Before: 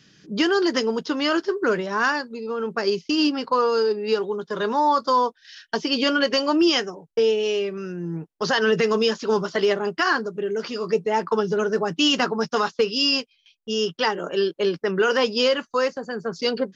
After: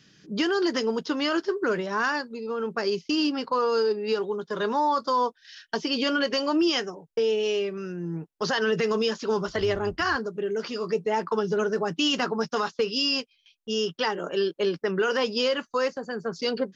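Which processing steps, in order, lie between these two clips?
0:09.47–0:10.16: sub-octave generator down 2 octaves, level −5 dB
brickwall limiter −13.5 dBFS, peak gain reduction 3.5 dB
level −2.5 dB

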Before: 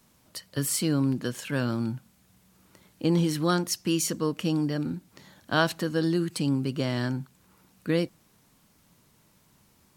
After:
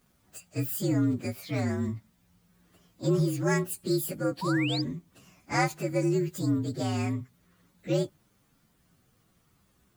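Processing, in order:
partials spread apart or drawn together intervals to 118%
sound drawn into the spectrogram rise, 0:04.41–0:04.82, 890–5,200 Hz −34 dBFS

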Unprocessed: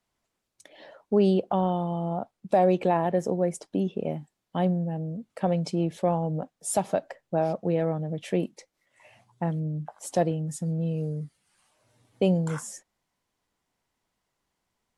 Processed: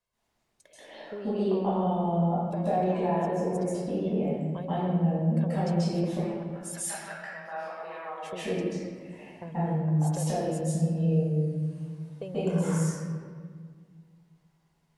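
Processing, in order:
downward compressor, threshold −29 dBFS, peak gain reduction 12 dB
0:06.04–0:08.25: high-pass with resonance 2,100 Hz → 980 Hz, resonance Q 3.2
convolution reverb RT60 1.8 s, pre-delay 132 ms, DRR −11 dB
level −8.5 dB

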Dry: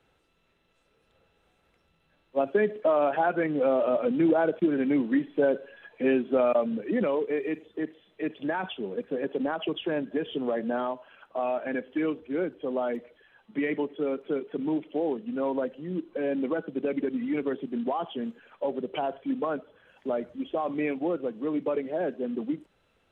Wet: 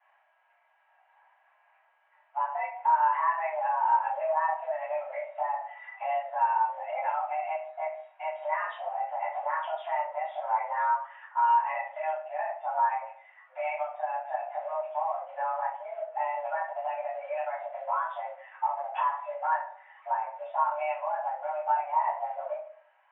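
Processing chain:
downward compressor 6 to 1, threshold −31 dBFS, peak gain reduction 12 dB
rectangular room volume 35 cubic metres, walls mixed, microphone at 2.5 metres
single-sideband voice off tune +310 Hz 380–2,100 Hz
level −7 dB

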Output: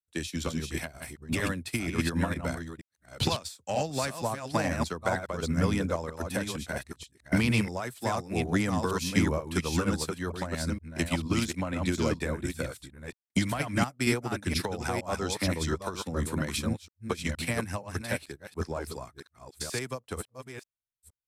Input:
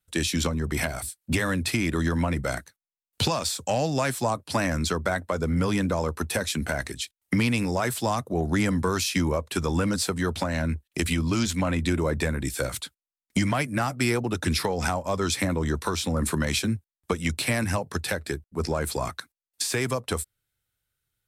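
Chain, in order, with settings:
delay that plays each chunk backwards 469 ms, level −3 dB
expander for the loud parts 2.5 to 1, over −35 dBFS

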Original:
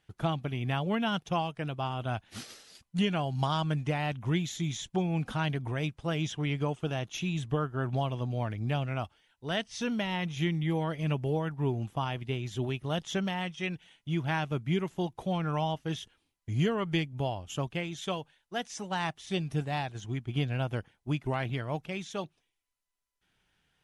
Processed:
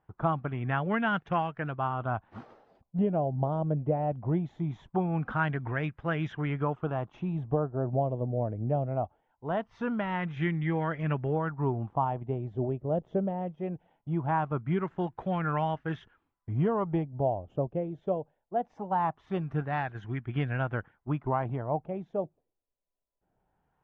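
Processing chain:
auto-filter low-pass sine 0.21 Hz 560–1,700 Hz

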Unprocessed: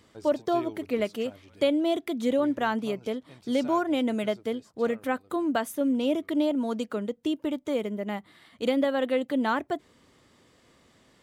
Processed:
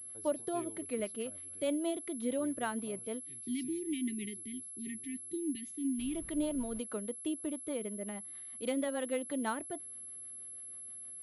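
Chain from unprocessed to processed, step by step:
0:03.23–0:06.16: time-frequency box erased 430–1,800 Hz
0:05.98–0:06.78: background noise brown −40 dBFS
rotating-speaker cabinet horn 6.3 Hz
switching amplifier with a slow clock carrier 11,000 Hz
level −7.5 dB

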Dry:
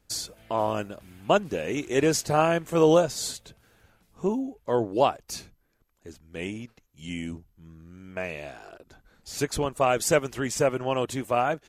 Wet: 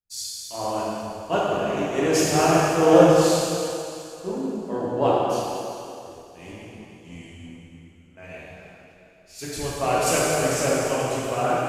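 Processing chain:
dense smooth reverb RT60 4.5 s, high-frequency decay 1×, DRR −8.5 dB
multiband upward and downward expander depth 70%
level −6 dB

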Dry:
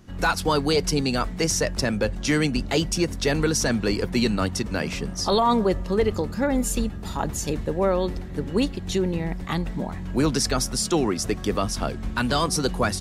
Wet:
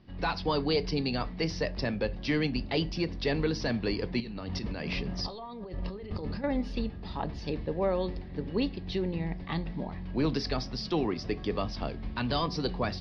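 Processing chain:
elliptic low-pass filter 4,900 Hz, stop band 40 dB
parametric band 1,400 Hz −8.5 dB 0.28 octaves
0:04.20–0:06.44: compressor whose output falls as the input rises −31 dBFS, ratio −1
convolution reverb RT60 0.35 s, pre-delay 7 ms, DRR 14 dB
level −6 dB

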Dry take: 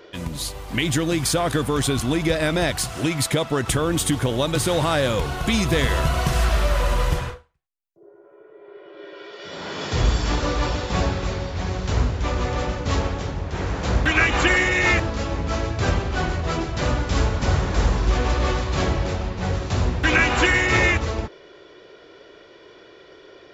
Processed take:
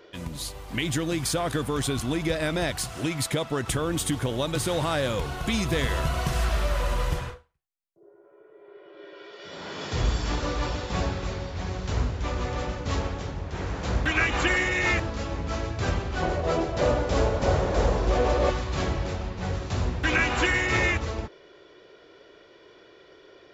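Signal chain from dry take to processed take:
0:16.22–0:18.50: parametric band 550 Hz +11.5 dB 1.2 octaves
level −5.5 dB

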